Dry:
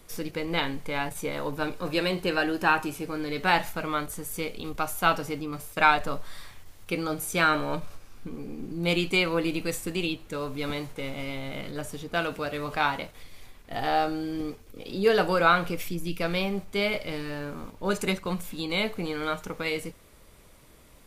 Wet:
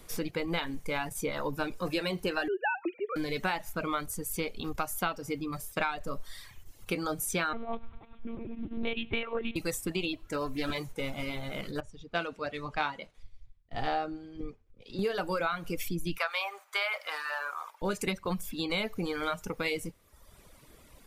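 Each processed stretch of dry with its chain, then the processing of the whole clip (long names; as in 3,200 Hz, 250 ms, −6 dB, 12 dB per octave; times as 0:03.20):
0:02.48–0:03.16: three sine waves on the formant tracks + high-frequency loss of the air 180 metres
0:07.53–0:09.56: echo machine with several playback heads 99 ms, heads first and third, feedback 60%, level −21.5 dB + one-pitch LPC vocoder at 8 kHz 230 Hz
0:10.13–0:10.78: comb filter 3 ms, depth 34% + highs frequency-modulated by the lows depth 0.23 ms
0:11.80–0:14.99: low-pass filter 5,600 Hz + multiband upward and downward expander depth 100%
0:16.18–0:17.82: high-pass filter 670 Hz 24 dB per octave + parametric band 1,300 Hz +10.5 dB 1.6 octaves
whole clip: reverb reduction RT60 0.94 s; downward compressor 16 to 1, threshold −28 dBFS; level +1 dB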